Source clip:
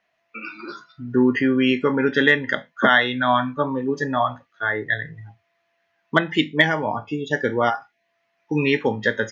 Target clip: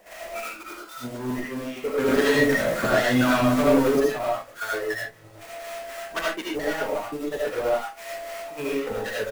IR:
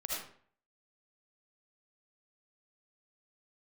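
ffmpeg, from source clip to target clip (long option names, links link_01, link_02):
-filter_complex "[0:a]aeval=exprs='val(0)+0.5*0.0841*sgn(val(0))':channel_layout=same,equalizer=frequency=125:width_type=o:width=1:gain=-5,equalizer=frequency=250:width_type=o:width=1:gain=-3,equalizer=frequency=500:width_type=o:width=1:gain=7,equalizer=frequency=4000:width_type=o:width=1:gain=-5,asoftclip=type=tanh:threshold=-18dB,bandreject=frequency=77.15:width_type=h:width=4,bandreject=frequency=154.3:width_type=h:width=4,bandreject=frequency=231.45:width_type=h:width=4,bandreject=frequency=308.6:width_type=h:width=4,bandreject=frequency=385.75:width_type=h:width=4,bandreject=frequency=462.9:width_type=h:width=4,bandreject=frequency=540.05:width_type=h:width=4,bandreject=frequency=617.2:width_type=h:width=4,bandreject=frequency=694.35:width_type=h:width=4,bandreject=frequency=771.5:width_type=h:width=4,acrossover=split=730[link_01][link_02];[link_01]aeval=exprs='val(0)*(1-0.7/2+0.7/2*cos(2*PI*3.8*n/s))':channel_layout=same[link_03];[link_02]aeval=exprs='val(0)*(1-0.7/2-0.7/2*cos(2*PI*3.8*n/s))':channel_layout=same[link_04];[link_03][link_04]amix=inputs=2:normalize=0,aecho=1:1:25|40:0.178|0.188,acrusher=bits=6:mix=0:aa=0.000001,acompressor=threshold=-27dB:ratio=6,asettb=1/sr,asplit=3[link_05][link_06][link_07];[link_05]atrim=end=1.964[link_08];[link_06]atrim=start=1.96:end=3.99,asetpts=PTS-STARTPTS,afade=type=in:duration=0.004:curve=qsin,afade=type=out:start_time=2.026:duration=0.004:curve=qsin,equalizer=frequency=140:width=0.53:gain=8[link_09];[link_07]atrim=start=3.986[link_10];[link_08][link_09]acrossfade=duration=0.004:curve1=hsin:curve2=qsin[link_11];[link_11][link_10]acrossfade=duration=0.004:curve1=qsin:curve2=hsin,agate=range=-27dB:threshold=-28dB:ratio=16:detection=peak[link_12];[1:a]atrim=start_sample=2205,atrim=end_sample=6615[link_13];[link_12][link_13]afir=irnorm=-1:irlink=0,volume=7.5dB"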